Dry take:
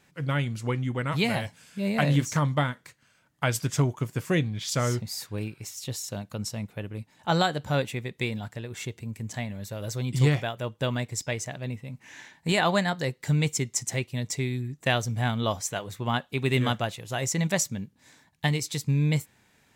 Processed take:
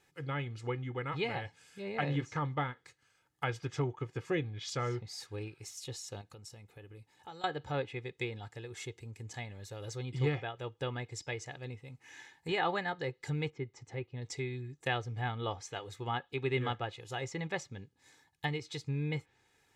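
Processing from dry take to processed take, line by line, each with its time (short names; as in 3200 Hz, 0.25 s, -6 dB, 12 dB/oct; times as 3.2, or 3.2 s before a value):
6.21–7.44 compressor, threshold -38 dBFS
13.5–14.22 tape spacing loss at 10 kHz 33 dB
whole clip: treble ducked by the level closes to 2800 Hz, closed at -24 dBFS; low shelf 160 Hz -3.5 dB; comb 2.4 ms, depth 65%; gain -8 dB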